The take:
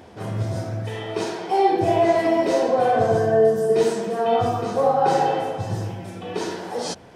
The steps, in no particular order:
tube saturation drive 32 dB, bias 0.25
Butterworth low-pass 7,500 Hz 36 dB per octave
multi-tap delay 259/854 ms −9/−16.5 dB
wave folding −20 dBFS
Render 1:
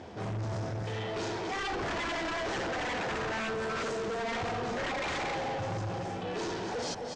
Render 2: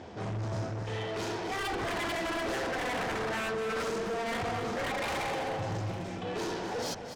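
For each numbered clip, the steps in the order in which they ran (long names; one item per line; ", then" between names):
multi-tap delay, then wave folding, then tube saturation, then Butterworth low-pass
wave folding, then Butterworth low-pass, then tube saturation, then multi-tap delay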